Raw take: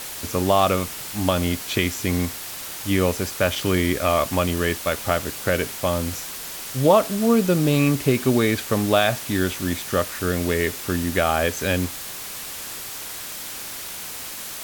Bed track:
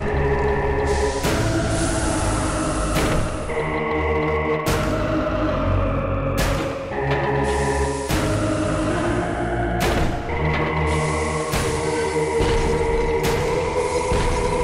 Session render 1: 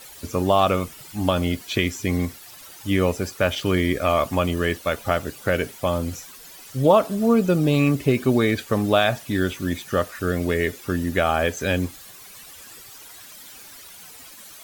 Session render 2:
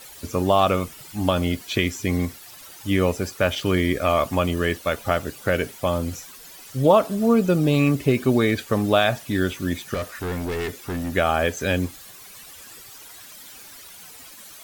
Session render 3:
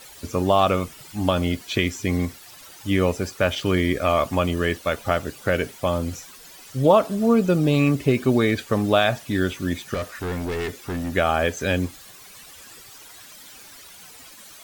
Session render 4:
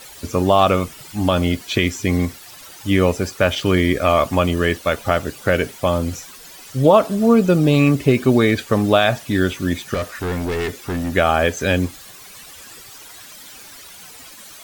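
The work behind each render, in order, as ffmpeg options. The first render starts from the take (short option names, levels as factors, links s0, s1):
-af "afftdn=nr=13:nf=-34"
-filter_complex "[0:a]asettb=1/sr,asplit=3[s0][s1][s2];[s0]atrim=end=9.944[s3];[s1]atrim=start=9.94:end=11.13,asetpts=PTS-STARTPTS,afade=t=in:d=0.004:c=qsin,afade=t=out:st=1.186:d=0.004:c=qsin,asoftclip=type=hard:threshold=0.0631[s4];[s2]atrim=start=11.126[s5];[s3][s4]acrossfade=d=0.004:c1=hsin:c2=qsin[s6];[s6][s5]acrossfade=d=0.004:c1=qsin:c2=hsin"
-af "equalizer=f=13000:t=o:w=0.69:g=-4.5"
-af "volume=1.68,alimiter=limit=0.794:level=0:latency=1"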